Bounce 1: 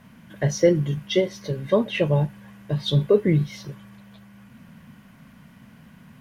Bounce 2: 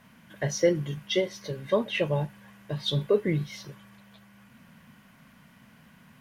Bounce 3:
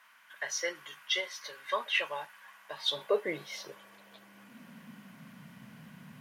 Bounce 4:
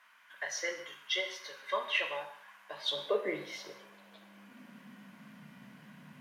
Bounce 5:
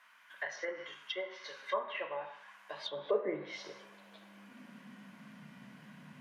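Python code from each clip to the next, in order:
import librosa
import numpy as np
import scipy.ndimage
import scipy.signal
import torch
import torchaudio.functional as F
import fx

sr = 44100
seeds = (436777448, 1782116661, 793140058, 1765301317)

y1 = fx.low_shelf(x, sr, hz=440.0, db=-7.5)
y1 = y1 * 10.0 ** (-1.5 / 20.0)
y2 = fx.rider(y1, sr, range_db=10, speed_s=2.0)
y2 = fx.filter_sweep_highpass(y2, sr, from_hz=1200.0, to_hz=140.0, start_s=2.36, end_s=5.49, q=1.6)
y3 = scipy.signal.sosfilt(scipy.signal.butter(2, 150.0, 'highpass', fs=sr, output='sos'), y2)
y3 = fx.high_shelf(y3, sr, hz=6400.0, db=-6.5)
y3 = fx.rev_gated(y3, sr, seeds[0], gate_ms=260, shape='falling', drr_db=4.5)
y3 = y3 * 10.0 ** (-2.0 / 20.0)
y4 = fx.env_lowpass_down(y3, sr, base_hz=1300.0, full_db=-32.0)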